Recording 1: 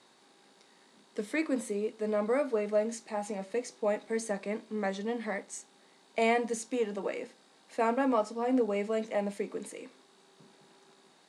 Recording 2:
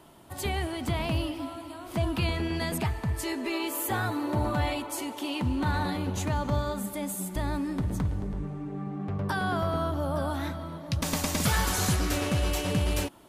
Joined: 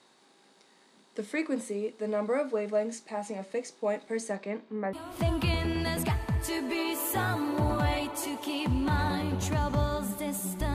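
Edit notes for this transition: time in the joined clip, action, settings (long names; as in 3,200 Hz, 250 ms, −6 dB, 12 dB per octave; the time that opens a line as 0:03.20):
recording 1
0:04.35–0:04.93: low-pass filter 6,400 Hz → 1,400 Hz
0:04.93: continue with recording 2 from 0:01.68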